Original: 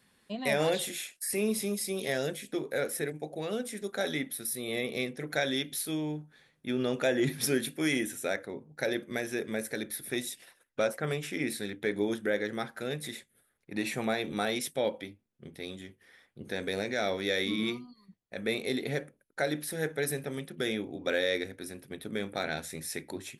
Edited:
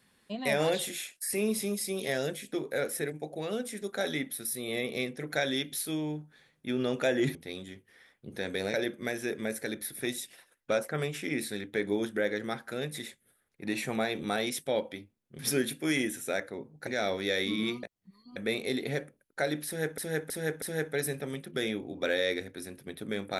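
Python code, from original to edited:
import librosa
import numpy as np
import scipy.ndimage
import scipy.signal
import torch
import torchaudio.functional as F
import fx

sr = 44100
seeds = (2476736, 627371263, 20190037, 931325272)

y = fx.edit(x, sr, fx.swap(start_s=7.35, length_s=1.48, other_s=15.48, other_length_s=1.39),
    fx.reverse_span(start_s=17.83, length_s=0.53),
    fx.repeat(start_s=19.66, length_s=0.32, count=4), tone=tone)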